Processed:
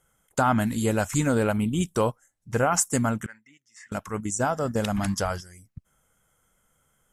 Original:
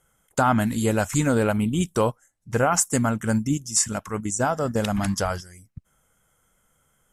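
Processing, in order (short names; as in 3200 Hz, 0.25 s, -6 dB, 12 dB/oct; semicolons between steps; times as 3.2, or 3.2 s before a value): 3.26–3.92 band-pass 1900 Hz, Q 7.1; gain -2 dB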